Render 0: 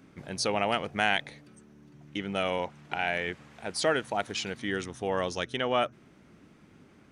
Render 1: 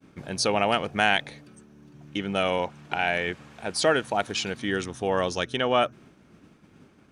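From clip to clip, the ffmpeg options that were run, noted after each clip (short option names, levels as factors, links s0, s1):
-af "bandreject=f=2000:w=13,agate=range=0.0224:threshold=0.00251:ratio=3:detection=peak,volume=1.68"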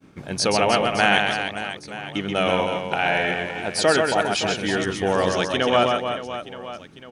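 -af "aecho=1:1:130|312|566.8|923.5|1423:0.631|0.398|0.251|0.158|0.1,volume=1.41"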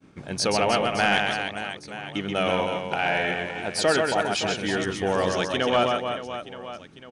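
-af "aresample=22050,aresample=44100,asoftclip=type=tanh:threshold=0.501,volume=0.75"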